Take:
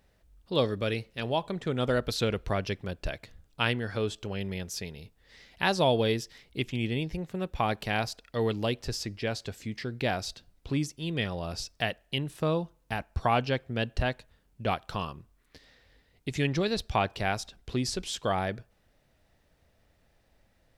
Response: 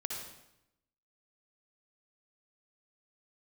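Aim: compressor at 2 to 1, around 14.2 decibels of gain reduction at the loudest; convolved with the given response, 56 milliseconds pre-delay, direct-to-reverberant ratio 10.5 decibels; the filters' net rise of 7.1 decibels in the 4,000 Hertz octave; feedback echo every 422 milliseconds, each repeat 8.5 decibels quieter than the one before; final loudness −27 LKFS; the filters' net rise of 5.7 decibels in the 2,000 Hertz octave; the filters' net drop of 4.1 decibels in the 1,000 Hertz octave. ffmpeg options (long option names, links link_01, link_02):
-filter_complex "[0:a]equalizer=frequency=1000:width_type=o:gain=-8,equalizer=frequency=2000:width_type=o:gain=7.5,equalizer=frequency=4000:width_type=o:gain=7,acompressor=threshold=-46dB:ratio=2,aecho=1:1:422|844|1266|1688:0.376|0.143|0.0543|0.0206,asplit=2[link_01][link_02];[1:a]atrim=start_sample=2205,adelay=56[link_03];[link_02][link_03]afir=irnorm=-1:irlink=0,volume=-12dB[link_04];[link_01][link_04]amix=inputs=2:normalize=0,volume=13dB"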